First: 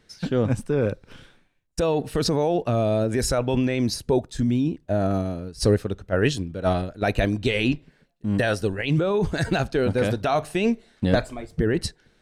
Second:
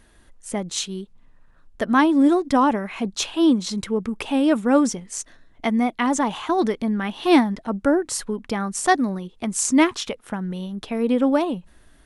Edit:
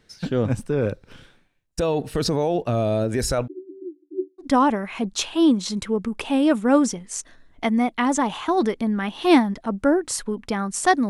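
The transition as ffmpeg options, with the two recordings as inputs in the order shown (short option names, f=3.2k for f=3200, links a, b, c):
-filter_complex "[0:a]asplit=3[a][b][c];[a]afade=t=out:st=3.46:d=0.02[d];[b]asuperpass=centerf=330:order=20:qfactor=3.7,afade=t=in:st=3.46:d=0.02,afade=t=out:st=4.48:d=0.02[e];[c]afade=t=in:st=4.48:d=0.02[f];[d][e][f]amix=inputs=3:normalize=0,apad=whole_dur=11.09,atrim=end=11.09,atrim=end=4.48,asetpts=PTS-STARTPTS[g];[1:a]atrim=start=2.39:end=9.1,asetpts=PTS-STARTPTS[h];[g][h]acrossfade=d=0.1:c1=tri:c2=tri"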